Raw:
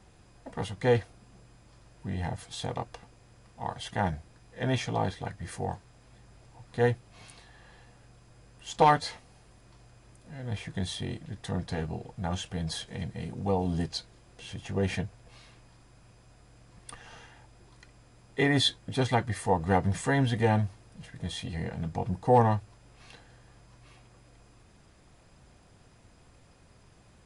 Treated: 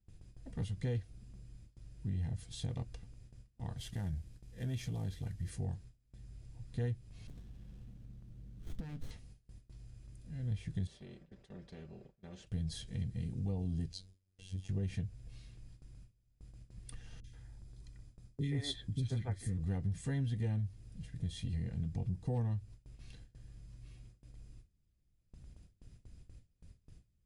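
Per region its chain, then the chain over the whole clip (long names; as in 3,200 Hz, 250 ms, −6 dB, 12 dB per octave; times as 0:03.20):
0:03.77–0:05.50: variable-slope delta modulation 64 kbit/s + downward compressor 2 to 1, threshold −34 dBFS
0:07.27–0:09.11: parametric band 210 Hz +9.5 dB 0.79 octaves + downward compressor 10 to 1, threshold −35 dBFS + windowed peak hold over 17 samples
0:10.87–0:12.47: resonant band-pass 510 Hz, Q 3.1 + comb filter 5.2 ms, depth 70% + every bin compressed towards the loudest bin 2 to 1
0:13.92–0:14.69: dynamic equaliser 1,800 Hz, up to −7 dB, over −54 dBFS, Q 1 + phases set to zero 94.1 Hz
0:17.20–0:19.58: notch filter 2,800 Hz, Q 16 + three-band delay without the direct sound lows, highs, mids 40/130 ms, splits 340/2,200 Hz
whole clip: guitar amp tone stack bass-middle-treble 10-0-1; noise gate with hold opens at −58 dBFS; downward compressor 4 to 1, threshold −47 dBFS; level +13.5 dB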